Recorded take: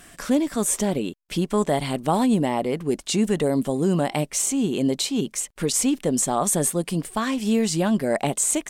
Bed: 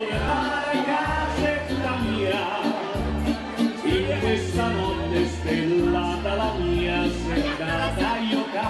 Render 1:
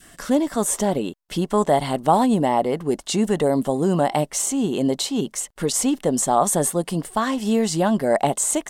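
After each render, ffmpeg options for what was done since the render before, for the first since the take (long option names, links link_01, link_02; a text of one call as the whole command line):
ffmpeg -i in.wav -af "adynamicequalizer=threshold=0.0141:dfrequency=800:dqfactor=1.1:tfrequency=800:tqfactor=1.1:attack=5:release=100:ratio=0.375:range=3.5:mode=boostabove:tftype=bell,bandreject=frequency=2400:width=8.7" out.wav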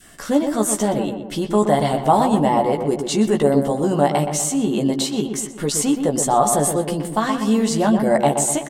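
ffmpeg -i in.wav -filter_complex "[0:a]asplit=2[link_01][link_02];[link_02]adelay=14,volume=-5dB[link_03];[link_01][link_03]amix=inputs=2:normalize=0,asplit=2[link_04][link_05];[link_05]adelay=123,lowpass=frequency=1600:poles=1,volume=-6dB,asplit=2[link_06][link_07];[link_07]adelay=123,lowpass=frequency=1600:poles=1,volume=0.53,asplit=2[link_08][link_09];[link_09]adelay=123,lowpass=frequency=1600:poles=1,volume=0.53,asplit=2[link_10][link_11];[link_11]adelay=123,lowpass=frequency=1600:poles=1,volume=0.53,asplit=2[link_12][link_13];[link_13]adelay=123,lowpass=frequency=1600:poles=1,volume=0.53,asplit=2[link_14][link_15];[link_15]adelay=123,lowpass=frequency=1600:poles=1,volume=0.53,asplit=2[link_16][link_17];[link_17]adelay=123,lowpass=frequency=1600:poles=1,volume=0.53[link_18];[link_04][link_06][link_08][link_10][link_12][link_14][link_16][link_18]amix=inputs=8:normalize=0" out.wav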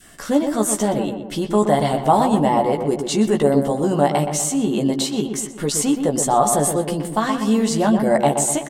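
ffmpeg -i in.wav -af anull out.wav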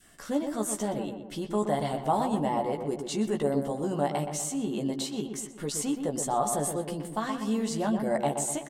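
ffmpeg -i in.wav -af "volume=-11dB" out.wav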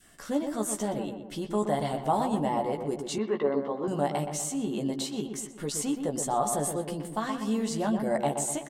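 ffmpeg -i in.wav -filter_complex "[0:a]asettb=1/sr,asplit=3[link_01][link_02][link_03];[link_01]atrim=end=3.184[link_04];[link_02]atrim=start=3.18:end=3.88,asetpts=PTS-STARTPTS,afade=type=in:duration=0.004:curve=qsin,afade=type=out:start_time=0.696:duration=0.004:curve=qsin,highpass=260,equalizer=frequency=420:width_type=q:width=4:gain=3,equalizer=frequency=720:width_type=q:width=4:gain=-4,equalizer=frequency=1100:width_type=q:width=4:gain=9,equalizer=frequency=2100:width_type=q:width=4:gain=4,equalizer=frequency=3100:width_type=q:width=4:gain=-4,lowpass=frequency=3800:width=0.5412,lowpass=frequency=3800:width=1.3066[link_05];[link_03]atrim=start=3.876[link_06];[link_04][link_05]acrossfade=duration=0.004:curve1=hsin:curve2=qsin[link_07];[link_07][link_06]acrossfade=duration=0.004:curve1=qsin:curve2=hsin" out.wav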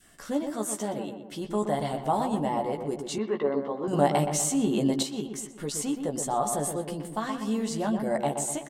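ffmpeg -i in.wav -filter_complex "[0:a]asettb=1/sr,asplit=3[link_01][link_02][link_03];[link_01]atrim=end=0.504[link_04];[link_02]atrim=start=0.5:end=1.41,asetpts=PTS-STARTPTS,afade=type=in:duration=0.004:curve=qsin,afade=type=out:start_time=0.906:duration=0.004:curve=qsin,highpass=frequency=150:poles=1[link_05];[link_03]atrim=start=1.406[link_06];[link_04][link_05]acrossfade=duration=0.004:curve1=hsin:curve2=qsin[link_07];[link_07][link_06]acrossfade=duration=0.004:curve1=qsin:curve2=hsin,asettb=1/sr,asplit=3[link_08][link_09][link_10];[link_08]atrim=end=3.934[link_11];[link_09]atrim=start=3.93:end=5.03,asetpts=PTS-STARTPTS,afade=type=in:duration=0.004:curve=qsin,afade=type=out:start_time=1.096:duration=0.004:curve=qsin,acontrast=44[link_12];[link_10]atrim=start=5.026[link_13];[link_11][link_12]acrossfade=duration=0.004:curve1=hsin:curve2=qsin[link_14];[link_14][link_13]acrossfade=duration=0.004:curve1=qsin:curve2=hsin" out.wav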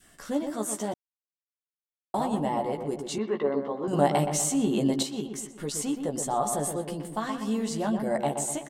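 ffmpeg -i in.wav -filter_complex "[0:a]asplit=3[link_01][link_02][link_03];[link_01]atrim=end=0.94,asetpts=PTS-STARTPTS,afade=type=out:start_time=0.936:duration=0.004:curve=hsin[link_04];[link_02]atrim=start=0.94:end=2.14,asetpts=PTS-STARTPTS,volume=0[link_05];[link_03]atrim=start=2.14,asetpts=PTS-STARTPTS,afade=type=in:duration=0.004:curve=hsin[link_06];[link_04][link_05][link_06]concat=n=3:v=0:a=1" out.wav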